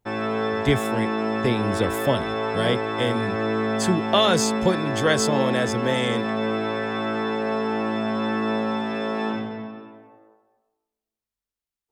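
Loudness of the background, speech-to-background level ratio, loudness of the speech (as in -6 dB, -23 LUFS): -25.5 LUFS, 1.0 dB, -24.5 LUFS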